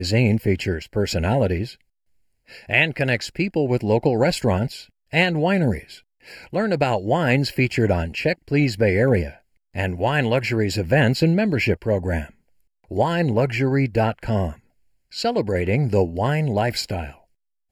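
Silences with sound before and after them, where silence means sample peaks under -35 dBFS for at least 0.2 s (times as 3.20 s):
1.73–2.52 s
4.83–5.13 s
5.96–6.27 s
9.32–9.75 s
12.30–12.91 s
14.54–15.13 s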